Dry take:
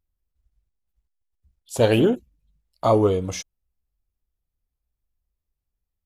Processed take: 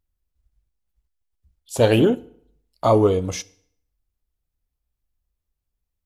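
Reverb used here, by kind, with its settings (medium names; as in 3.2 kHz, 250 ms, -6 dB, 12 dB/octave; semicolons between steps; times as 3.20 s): FDN reverb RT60 0.65 s, low-frequency decay 1×, high-frequency decay 0.85×, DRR 18 dB; trim +1.5 dB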